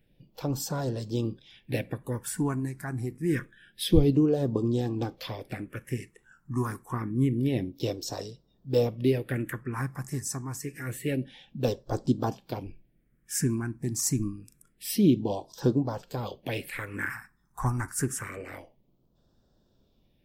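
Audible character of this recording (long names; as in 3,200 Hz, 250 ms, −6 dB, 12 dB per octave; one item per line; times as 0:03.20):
phaser sweep stages 4, 0.27 Hz, lowest notch 500–2,200 Hz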